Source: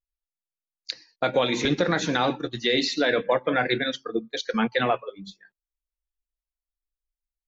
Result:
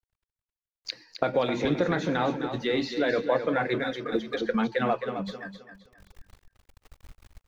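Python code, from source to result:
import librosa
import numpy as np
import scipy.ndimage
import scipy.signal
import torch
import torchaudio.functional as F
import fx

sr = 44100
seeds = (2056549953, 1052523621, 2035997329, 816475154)

p1 = fx.law_mismatch(x, sr, coded='mu')
p2 = fx.recorder_agc(p1, sr, target_db=-19.0, rise_db_per_s=26.0, max_gain_db=30)
p3 = fx.lowpass(p2, sr, hz=1500.0, slope=6)
p4 = p3 + fx.echo_feedback(p3, sr, ms=263, feedback_pct=31, wet_db=-9.0, dry=0)
p5 = fx.band_squash(p4, sr, depth_pct=100, at=(4.12, 4.74))
y = p5 * 10.0 ** (-2.5 / 20.0)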